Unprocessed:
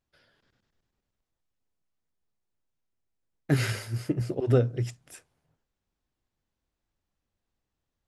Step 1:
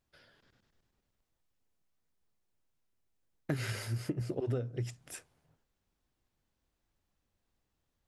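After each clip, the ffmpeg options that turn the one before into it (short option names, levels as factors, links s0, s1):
-af "acompressor=threshold=0.02:ratio=6,volume=1.26"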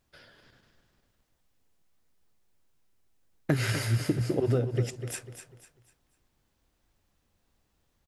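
-af "aecho=1:1:248|496|744|992:0.316|0.111|0.0387|0.0136,volume=2.51"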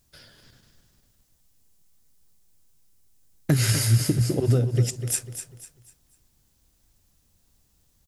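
-af "bass=f=250:g=8,treble=f=4000:g=14"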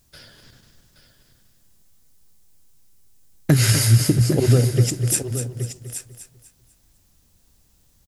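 -af "aecho=1:1:823:0.282,volume=1.78"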